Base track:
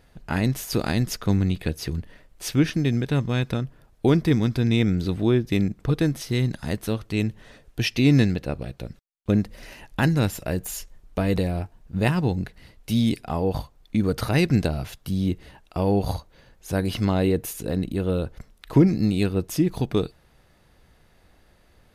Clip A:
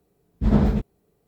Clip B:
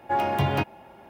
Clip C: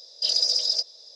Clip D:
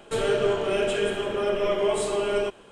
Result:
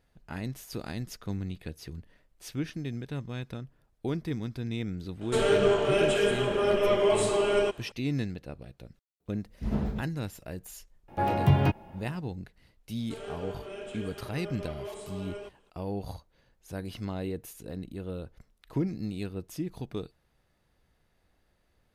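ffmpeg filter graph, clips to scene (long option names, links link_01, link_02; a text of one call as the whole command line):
ffmpeg -i bed.wav -i cue0.wav -i cue1.wav -i cue2.wav -i cue3.wav -filter_complex "[4:a]asplit=2[link_01][link_02];[0:a]volume=-13dB[link_03];[2:a]lowshelf=frequency=280:gain=12[link_04];[link_01]atrim=end=2.71,asetpts=PTS-STARTPTS,afade=type=in:duration=0.004:curve=hsin,afade=type=out:start_time=2.706:duration=0.004:curve=hsin,adelay=229761S[link_05];[1:a]atrim=end=1.27,asetpts=PTS-STARTPTS,volume=-11.5dB,afade=type=in:duration=0.004:curve=hsin,afade=type=out:start_time=1.266:duration=0.004:curve=hsin,adelay=9200[link_06];[link_04]atrim=end=1.09,asetpts=PTS-STARTPTS,volume=-5.5dB,afade=type=in:duration=0.004:curve=hsin,afade=type=out:start_time=1.086:duration=0.004:curve=hsin,adelay=11080[link_07];[link_02]atrim=end=2.71,asetpts=PTS-STARTPTS,volume=-16.5dB,afade=type=in:duration=0.004:curve=hsin,afade=type=out:start_time=2.706:duration=0.004:curve=hsin,adelay=12990[link_08];[link_03][link_05][link_06][link_07][link_08]amix=inputs=5:normalize=0" out.wav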